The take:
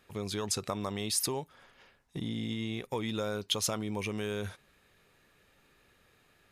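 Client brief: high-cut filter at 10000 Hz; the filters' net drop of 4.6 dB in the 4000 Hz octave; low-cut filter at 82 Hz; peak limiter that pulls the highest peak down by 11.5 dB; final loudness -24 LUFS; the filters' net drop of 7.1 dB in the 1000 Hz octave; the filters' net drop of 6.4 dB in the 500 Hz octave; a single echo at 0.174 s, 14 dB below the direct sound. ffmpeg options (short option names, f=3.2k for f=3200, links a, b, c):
-af "highpass=82,lowpass=10k,equalizer=f=500:t=o:g=-6.5,equalizer=f=1k:t=o:g=-7,equalizer=f=4k:t=o:g=-5.5,alimiter=level_in=7dB:limit=-24dB:level=0:latency=1,volume=-7dB,aecho=1:1:174:0.2,volume=17dB"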